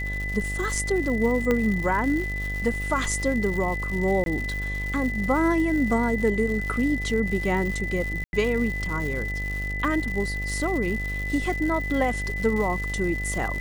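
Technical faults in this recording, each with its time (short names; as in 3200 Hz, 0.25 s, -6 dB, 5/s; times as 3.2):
buzz 50 Hz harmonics 17 -31 dBFS
crackle 240/s -31 dBFS
tone 2000 Hz -30 dBFS
1.51 pop -11 dBFS
4.24–4.26 gap 22 ms
8.24–8.33 gap 91 ms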